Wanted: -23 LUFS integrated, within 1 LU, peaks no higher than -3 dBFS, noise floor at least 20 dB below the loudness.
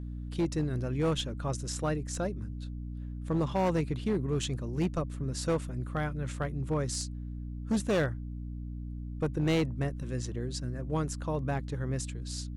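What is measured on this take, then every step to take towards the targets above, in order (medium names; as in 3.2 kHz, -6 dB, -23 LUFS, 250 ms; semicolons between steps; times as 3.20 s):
clipped samples 1.7%; clipping level -23.0 dBFS; hum 60 Hz; highest harmonic 300 Hz; hum level -36 dBFS; loudness -33.0 LUFS; peak level -23.0 dBFS; loudness target -23.0 LUFS
-> clip repair -23 dBFS; hum notches 60/120/180/240/300 Hz; trim +10 dB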